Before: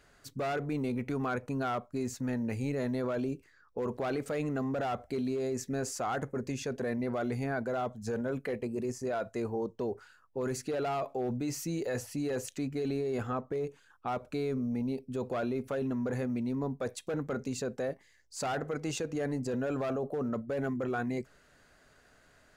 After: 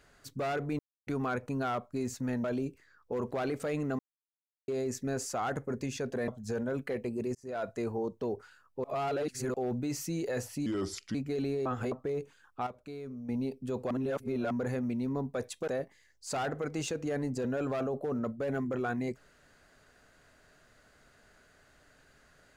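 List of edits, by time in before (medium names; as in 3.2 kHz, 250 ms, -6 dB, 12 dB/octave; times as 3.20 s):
0.79–1.07 s: mute
2.44–3.10 s: delete
4.65–5.34 s: mute
6.94–7.86 s: delete
8.93–9.23 s: fade in
10.42–11.12 s: reverse
12.24–12.61 s: speed 76%
13.12–13.38 s: reverse
14.13–14.75 s: gain -9.5 dB
15.37–15.97 s: reverse
17.14–17.77 s: delete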